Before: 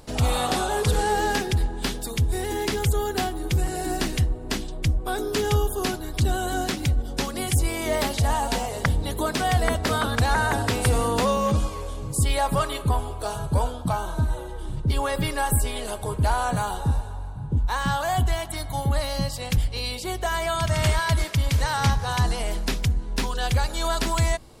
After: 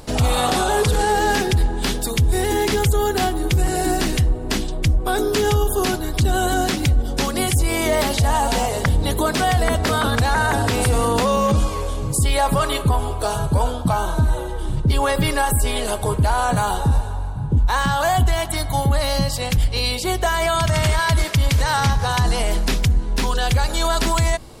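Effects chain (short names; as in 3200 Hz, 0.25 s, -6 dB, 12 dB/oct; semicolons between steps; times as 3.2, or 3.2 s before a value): limiter -18 dBFS, peak gain reduction 6.5 dB; gain +8 dB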